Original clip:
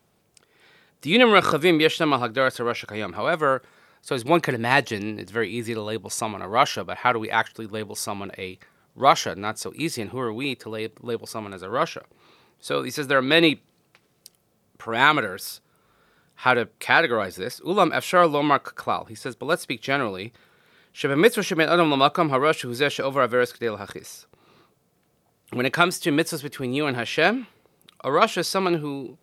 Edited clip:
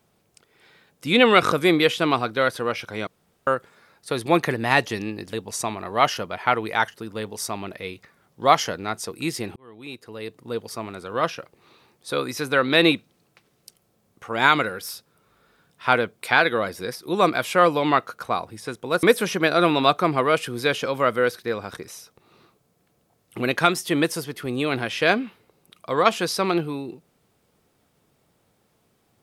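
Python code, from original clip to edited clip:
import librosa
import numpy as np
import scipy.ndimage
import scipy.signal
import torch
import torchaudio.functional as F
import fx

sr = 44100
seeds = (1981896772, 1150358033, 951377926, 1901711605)

y = fx.edit(x, sr, fx.room_tone_fill(start_s=3.07, length_s=0.4),
    fx.cut(start_s=5.33, length_s=0.58),
    fx.fade_in_span(start_s=10.14, length_s=1.05),
    fx.cut(start_s=19.61, length_s=1.58), tone=tone)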